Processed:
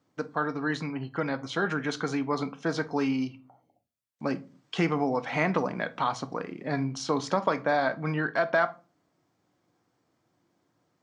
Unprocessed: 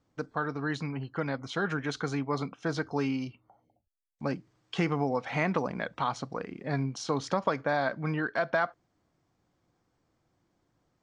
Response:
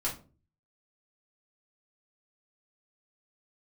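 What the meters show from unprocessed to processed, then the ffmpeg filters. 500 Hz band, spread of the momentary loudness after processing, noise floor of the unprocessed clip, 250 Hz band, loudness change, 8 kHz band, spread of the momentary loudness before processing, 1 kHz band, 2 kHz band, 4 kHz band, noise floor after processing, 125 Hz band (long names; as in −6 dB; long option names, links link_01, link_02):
+3.0 dB, 8 LU, −76 dBFS, +3.0 dB, +2.5 dB, +2.5 dB, 7 LU, +3.0 dB, +3.0 dB, +2.5 dB, −74 dBFS, −0.5 dB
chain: -filter_complex "[0:a]highpass=140,asplit=2[link_01][link_02];[1:a]atrim=start_sample=2205,asetrate=41895,aresample=44100[link_03];[link_02][link_03]afir=irnorm=-1:irlink=0,volume=-13.5dB[link_04];[link_01][link_04]amix=inputs=2:normalize=0,volume=1dB"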